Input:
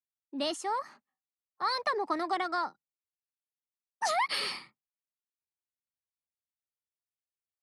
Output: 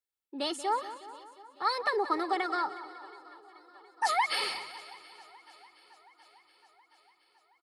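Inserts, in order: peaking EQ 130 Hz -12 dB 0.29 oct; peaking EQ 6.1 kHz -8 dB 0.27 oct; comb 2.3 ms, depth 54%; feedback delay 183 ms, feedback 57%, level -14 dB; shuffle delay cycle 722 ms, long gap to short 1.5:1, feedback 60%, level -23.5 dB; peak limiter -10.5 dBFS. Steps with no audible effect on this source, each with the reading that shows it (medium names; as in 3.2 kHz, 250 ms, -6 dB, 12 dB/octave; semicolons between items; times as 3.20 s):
peak limiter -10.5 dBFS: peak at its input -16.5 dBFS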